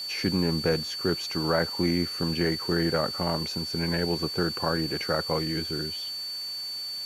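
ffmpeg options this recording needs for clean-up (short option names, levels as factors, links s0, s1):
-af "adeclick=t=4,bandreject=f=4500:w=30,afwtdn=0.0045"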